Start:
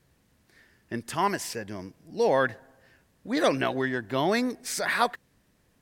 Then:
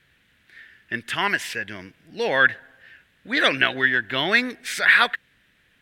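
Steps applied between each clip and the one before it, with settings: high-order bell 2.3 kHz +15 dB; trim -1.5 dB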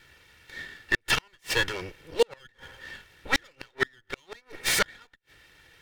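comb filter that takes the minimum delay 2.2 ms; inverted gate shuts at -17 dBFS, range -40 dB; trim +7 dB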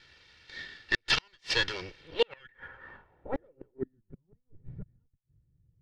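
low-pass sweep 4.7 kHz -> 130 Hz, 1.96–4.38 s; trim -4.5 dB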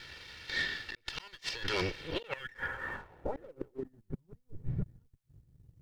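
compressor with a negative ratio -39 dBFS, ratio -1; waveshaping leveller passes 1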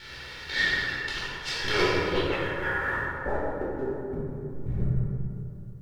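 plate-style reverb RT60 2.7 s, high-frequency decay 0.4×, DRR -9 dB; trim +1 dB

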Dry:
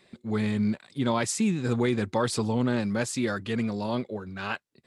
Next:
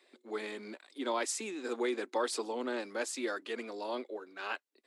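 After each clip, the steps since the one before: steep high-pass 280 Hz 48 dB/octave; trim -5.5 dB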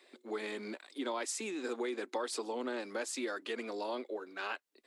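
compression 3:1, threshold -39 dBFS, peak gain reduction 9 dB; trim +3.5 dB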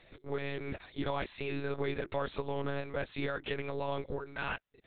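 in parallel at -4.5 dB: saturation -36 dBFS, distortion -12 dB; on the sum: monotone LPC vocoder at 8 kHz 140 Hz

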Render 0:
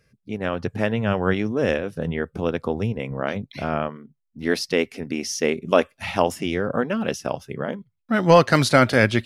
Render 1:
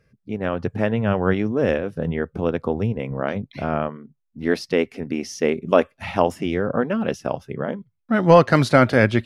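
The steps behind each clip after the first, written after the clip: treble shelf 2.8 kHz -10.5 dB; trim +2 dB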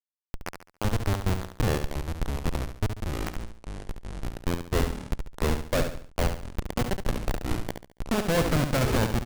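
Schmitt trigger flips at -15.5 dBFS; ever faster or slower copies 760 ms, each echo -6 st, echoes 2, each echo -6 dB; on a send: feedback delay 70 ms, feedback 36%, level -7.5 dB; on the sum: trim -1.5 dB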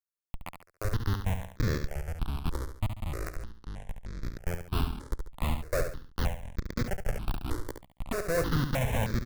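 stepped phaser 3.2 Hz 700–2900 Hz; trim -2 dB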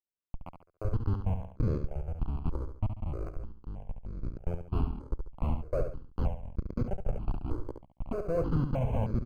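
boxcar filter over 24 samples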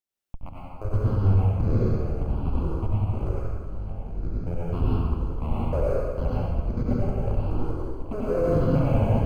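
plate-style reverb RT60 1.6 s, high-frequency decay 0.9×, pre-delay 80 ms, DRR -6.5 dB; trim +1.5 dB

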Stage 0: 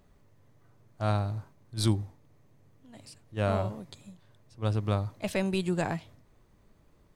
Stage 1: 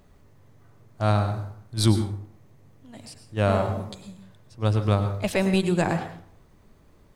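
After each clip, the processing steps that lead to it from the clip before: plate-style reverb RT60 0.56 s, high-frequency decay 0.6×, pre-delay 90 ms, DRR 8 dB; trim +6 dB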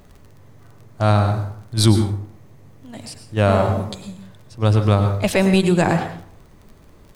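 crackle 19 per s -45 dBFS; in parallel at -2 dB: peak limiter -17 dBFS, peak gain reduction 9.5 dB; on the sum: trim +3 dB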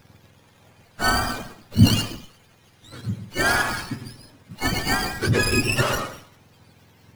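spectrum inverted on a logarithmic axis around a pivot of 980 Hz; sliding maximum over 5 samples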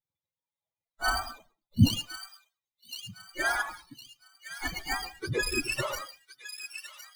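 expander on every frequency bin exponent 2; feedback echo behind a high-pass 1060 ms, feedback 36%, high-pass 2.2 kHz, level -8 dB; trim -4.5 dB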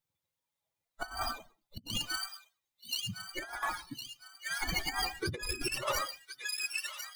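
compressor with a negative ratio -35 dBFS, ratio -0.5

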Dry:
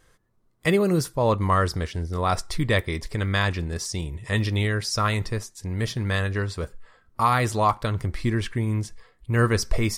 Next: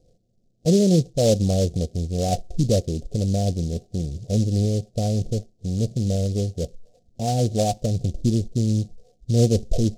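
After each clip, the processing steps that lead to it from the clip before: rippled Chebyshev low-pass 740 Hz, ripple 6 dB; delay time shaken by noise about 5.2 kHz, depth 0.071 ms; trim +6.5 dB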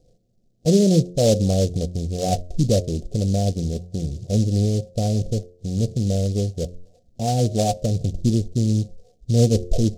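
de-hum 88.7 Hz, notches 7; trim +1.5 dB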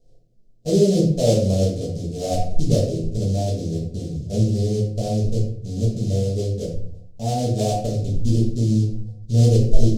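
simulated room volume 83 m³, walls mixed, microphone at 1.5 m; trim -8 dB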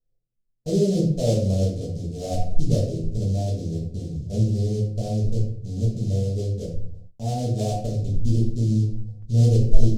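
gate with hold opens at -31 dBFS; bass shelf 170 Hz +6.5 dB; trim -6 dB

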